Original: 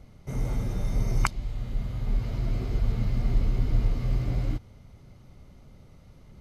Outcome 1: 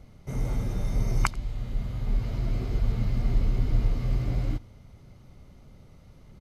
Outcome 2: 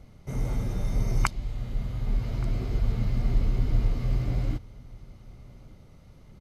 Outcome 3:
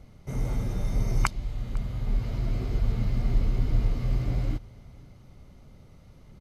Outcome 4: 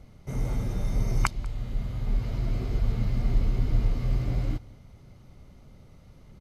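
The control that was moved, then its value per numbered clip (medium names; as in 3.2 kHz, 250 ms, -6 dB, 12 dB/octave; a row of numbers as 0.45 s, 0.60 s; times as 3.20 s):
delay, time: 87 ms, 1175 ms, 503 ms, 193 ms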